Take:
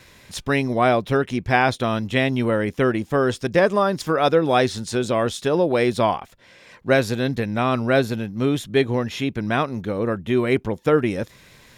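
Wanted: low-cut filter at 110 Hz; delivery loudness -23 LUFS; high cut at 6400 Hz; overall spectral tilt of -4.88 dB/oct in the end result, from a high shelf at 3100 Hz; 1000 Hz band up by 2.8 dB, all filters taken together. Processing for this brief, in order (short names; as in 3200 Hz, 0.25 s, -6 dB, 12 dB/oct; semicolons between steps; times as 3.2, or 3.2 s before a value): HPF 110 Hz; LPF 6400 Hz; bell 1000 Hz +4.5 dB; high shelf 3100 Hz -4.5 dB; gain -2.5 dB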